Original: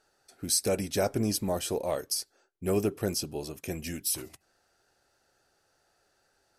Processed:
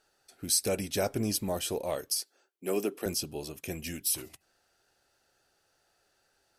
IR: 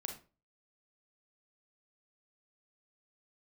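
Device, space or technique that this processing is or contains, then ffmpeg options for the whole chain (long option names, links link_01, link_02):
presence and air boost: -filter_complex "[0:a]asettb=1/sr,asplit=3[link_01][link_02][link_03];[link_01]atrim=end=2.204[link_04];[link_02]atrim=start=2.2:end=3.06,asetpts=PTS-STARTPTS,afade=type=in:duration=0.004:curve=qsin,afade=type=out:start_time=0.856:duration=0.004:curve=qsin,highpass=frequency=220:width=0.5412,highpass=frequency=220:width=1.3066[link_05];[link_03]atrim=start=3.056[link_06];[link_04][link_05]acrossfade=duration=0.004:curve1=hsin:curve2=qsin[link_07];[link_07][link_06]acrossfade=duration=0.004:curve1=qsin:curve2=hsin,equalizer=frequency=3000:width_type=o:width=0.95:gain=4.5,highshelf=frequency=11000:gain=6.5,volume=-2.5dB"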